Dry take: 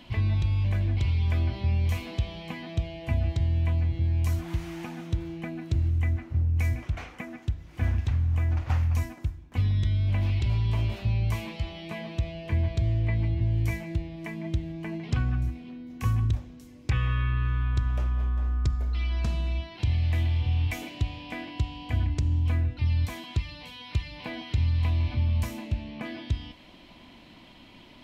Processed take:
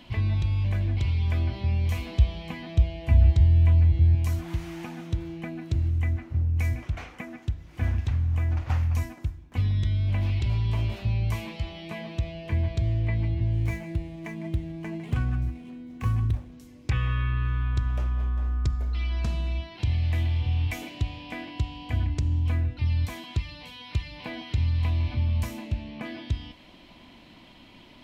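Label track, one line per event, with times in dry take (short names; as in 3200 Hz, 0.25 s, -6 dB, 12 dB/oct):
1.980000	4.150000	bell 61 Hz +11.5 dB 1.1 oct
13.530000	16.530000	median filter over 9 samples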